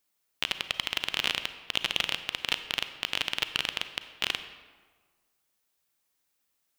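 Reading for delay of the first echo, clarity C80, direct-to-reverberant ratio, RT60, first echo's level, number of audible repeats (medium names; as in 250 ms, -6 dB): no echo, 12.0 dB, 10.0 dB, 1.5 s, no echo, no echo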